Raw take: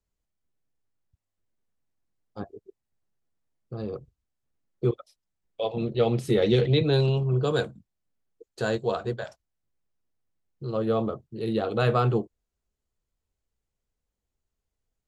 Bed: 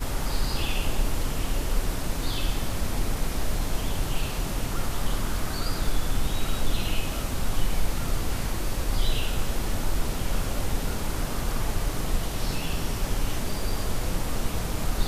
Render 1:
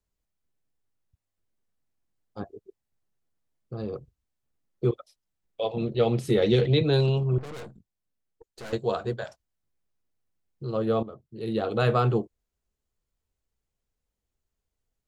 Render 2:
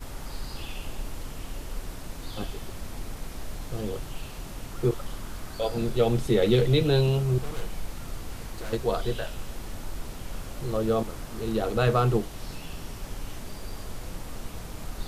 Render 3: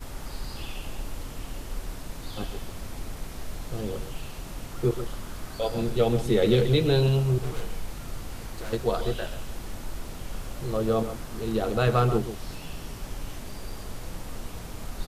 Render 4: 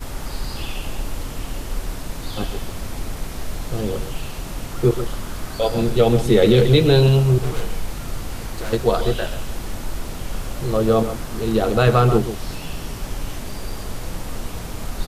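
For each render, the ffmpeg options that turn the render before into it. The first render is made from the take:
-filter_complex "[0:a]asettb=1/sr,asplit=3[a][b][c];[a]atrim=end=7.384[d];[b]atrim=start=7.38:end=8.73,asetpts=PTS-STARTPTS,afade=t=in:d=0.004:c=qsin,afade=t=out:st=1.346:d=0.004:c=qsin,aeval=exprs='(tanh(79.4*val(0)+0.7)-tanh(0.7))/79.4':c=same[e];[c]atrim=start=8.726[f];[d][e]acrossfade=d=0.004:c1=hsin:c2=qsin[g];[g][f]acrossfade=d=0.004:c1=qsin:c2=hsin,asplit=2[h][i];[h]atrim=end=11.03,asetpts=PTS-STARTPTS,afade=t=out:st=11.026:d=0.004:c=hsin:silence=0.188365[j];[i]atrim=start=11.03,asetpts=PTS-STARTPTS,afade=t=in:d=0.63:silence=0.188365[k];[j][k]concat=n=2:v=0:a=1"
-filter_complex "[1:a]volume=-9.5dB[a];[0:a][a]amix=inputs=2:normalize=0"
-filter_complex "[0:a]asplit=2[a][b];[b]adelay=134.1,volume=-11dB,highshelf=f=4k:g=-3.02[c];[a][c]amix=inputs=2:normalize=0"
-af "volume=8dB,alimiter=limit=-3dB:level=0:latency=1"

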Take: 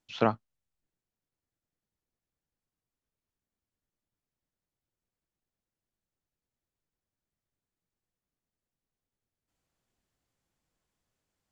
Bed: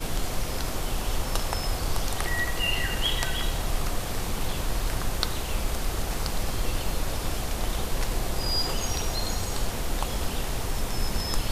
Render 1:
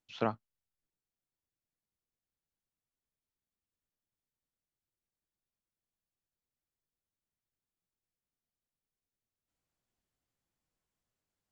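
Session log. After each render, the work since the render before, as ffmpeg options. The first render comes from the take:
-af "volume=-6.5dB"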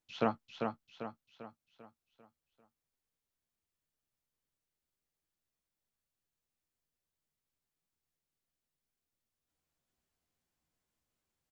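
-filter_complex "[0:a]asplit=2[a][b];[b]adelay=13,volume=-8.5dB[c];[a][c]amix=inputs=2:normalize=0,asplit=2[d][e];[e]aecho=0:1:395|790|1185|1580|1975|2370:0.562|0.253|0.114|0.0512|0.0231|0.0104[f];[d][f]amix=inputs=2:normalize=0"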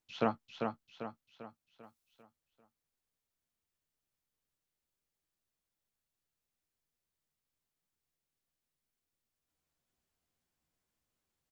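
-filter_complex "[0:a]asettb=1/sr,asplit=3[a][b][c];[a]atrim=end=1.834[d];[b]atrim=start=1.83:end=2.23,asetpts=PTS-STARTPTS,afade=t=in:d=0.004:c=qsin,afade=t=out:st=0.396:d=0.004:c=qsin,highshelf=f=2.8k:g=8[e];[c]atrim=start=2.226[f];[d][e]acrossfade=d=0.004:c1=hsin:c2=qsin[g];[g][f]acrossfade=d=0.004:c1=qsin:c2=hsin"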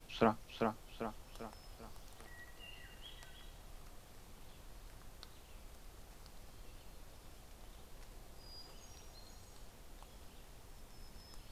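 -filter_complex "[1:a]volume=-27.5dB[a];[0:a][a]amix=inputs=2:normalize=0"

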